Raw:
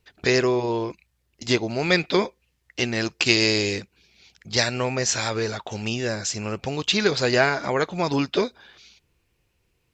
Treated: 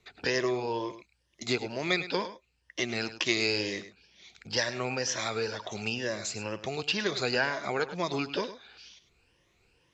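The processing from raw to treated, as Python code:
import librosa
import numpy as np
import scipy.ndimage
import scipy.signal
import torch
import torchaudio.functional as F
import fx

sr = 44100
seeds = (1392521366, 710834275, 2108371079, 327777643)

p1 = fx.spec_ripple(x, sr, per_octave=1.2, drift_hz=2.1, depth_db=10)
p2 = scipy.signal.sosfilt(scipy.signal.butter(2, 6700.0, 'lowpass', fs=sr, output='sos'), p1)
p3 = fx.low_shelf(p2, sr, hz=250.0, db=-6.5)
p4 = p3 + fx.echo_single(p3, sr, ms=103, db=-14.0, dry=0)
p5 = fx.band_squash(p4, sr, depth_pct=40)
y = p5 * 10.0 ** (-7.5 / 20.0)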